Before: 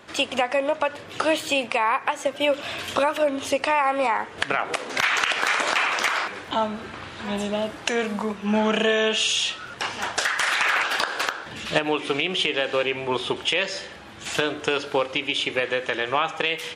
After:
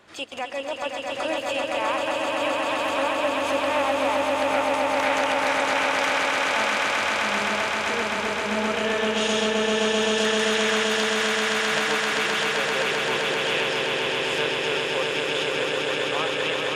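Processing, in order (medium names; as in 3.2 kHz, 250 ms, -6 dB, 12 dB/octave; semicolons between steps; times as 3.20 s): hum notches 60/120/180/240/300 Hz; transient shaper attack -6 dB, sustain -10 dB; echo with a slow build-up 130 ms, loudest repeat 8, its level -4 dB; trim -5.5 dB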